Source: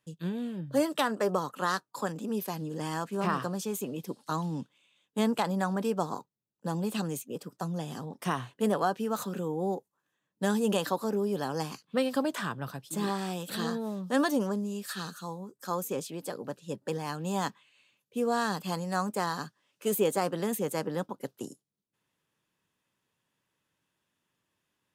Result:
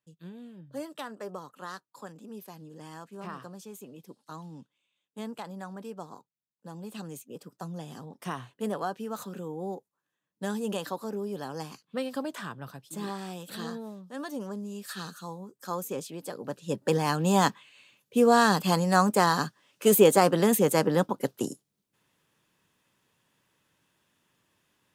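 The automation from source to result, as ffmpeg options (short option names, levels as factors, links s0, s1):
-af "volume=7.5,afade=t=in:st=6.73:d=0.73:silence=0.473151,afade=t=out:st=13.79:d=0.34:silence=0.354813,afade=t=in:st=14.13:d=0.86:silence=0.237137,afade=t=in:st=16.37:d=0.59:silence=0.334965"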